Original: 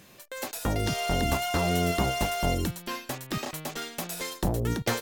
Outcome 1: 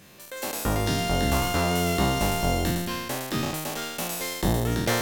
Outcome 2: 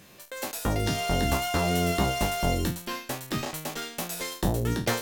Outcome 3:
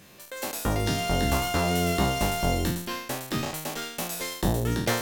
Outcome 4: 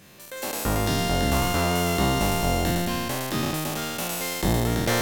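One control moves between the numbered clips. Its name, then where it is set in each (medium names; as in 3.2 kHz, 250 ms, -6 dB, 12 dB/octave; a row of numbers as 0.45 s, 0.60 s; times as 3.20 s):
spectral sustain, RT60: 1.42 s, 0.31 s, 0.65 s, 3.09 s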